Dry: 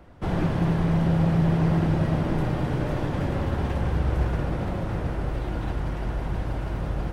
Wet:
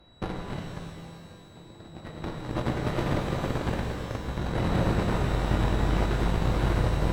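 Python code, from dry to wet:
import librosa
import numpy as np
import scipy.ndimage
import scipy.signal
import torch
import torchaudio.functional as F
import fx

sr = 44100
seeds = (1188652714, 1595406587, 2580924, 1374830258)

y = fx.over_compress(x, sr, threshold_db=-28.0, ratio=-0.5)
y = y + 10.0 ** (-51.0 / 20.0) * np.sin(2.0 * np.pi * 3900.0 * np.arange(len(y)) / sr)
y = fx.cheby_harmonics(y, sr, harmonics=(3, 7), levels_db=(-32, -20), full_scale_db=-13.5)
y = fx.rev_shimmer(y, sr, seeds[0], rt60_s=1.9, semitones=12, shimmer_db=-8, drr_db=1.0)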